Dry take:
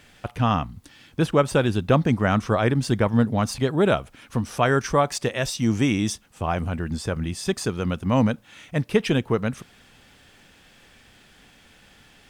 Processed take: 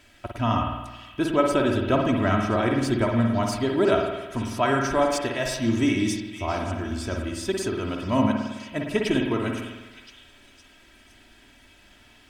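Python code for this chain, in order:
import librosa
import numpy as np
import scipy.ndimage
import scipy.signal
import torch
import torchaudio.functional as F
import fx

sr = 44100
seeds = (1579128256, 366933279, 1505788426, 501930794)

y = x + 0.71 * np.pad(x, (int(3.1 * sr / 1000.0), 0))[:len(x)]
y = fx.echo_stepped(y, sr, ms=511, hz=2700.0, octaves=0.7, feedback_pct=70, wet_db=-9.5)
y = fx.rev_spring(y, sr, rt60_s=1.1, pass_ms=(52,), chirp_ms=40, drr_db=1.5)
y = y * 10.0 ** (-4.5 / 20.0)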